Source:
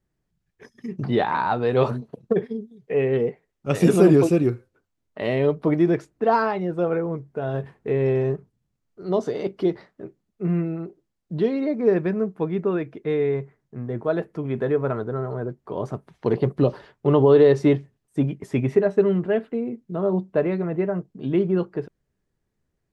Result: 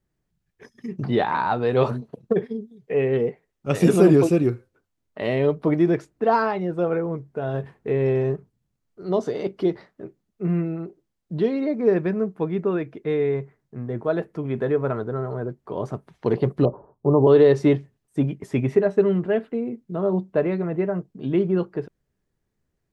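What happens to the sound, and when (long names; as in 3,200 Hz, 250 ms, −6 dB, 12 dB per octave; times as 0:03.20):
0:16.65–0:17.27: Butterworth low-pass 1,100 Hz 48 dB per octave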